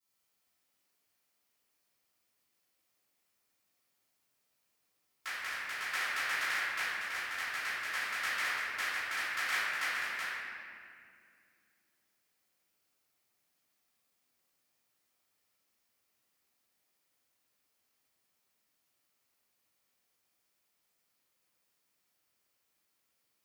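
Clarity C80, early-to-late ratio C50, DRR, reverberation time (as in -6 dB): -2.5 dB, -5.0 dB, -21.0 dB, 2.2 s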